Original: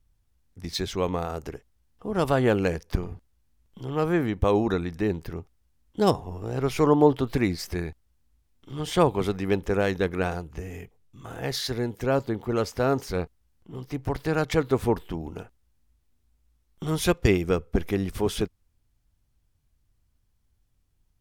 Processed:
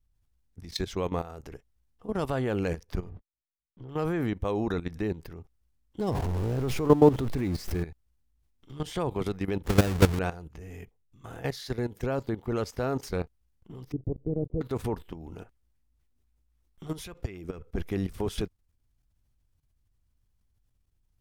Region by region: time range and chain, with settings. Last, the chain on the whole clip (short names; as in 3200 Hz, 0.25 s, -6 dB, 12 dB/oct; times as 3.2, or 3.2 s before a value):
3.09–3.89 zero-crossing step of -47 dBFS + gate -45 dBFS, range -48 dB + tape spacing loss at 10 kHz 35 dB
6–7.83 zero-crossing step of -28.5 dBFS + tilt shelf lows +3.5 dB, about 810 Hz
9.64–10.19 half-waves squared off + HPF 52 Hz + low shelf 110 Hz +11 dB
13.92–14.61 block floating point 3-bit + inverse Chebyshev low-pass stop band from 1600 Hz, stop band 60 dB
15.4–17.71 compressor 8:1, threshold -28 dBFS + LFO bell 3.9 Hz 260–2400 Hz +6 dB
whole clip: low shelf 110 Hz +4 dB; level quantiser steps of 14 dB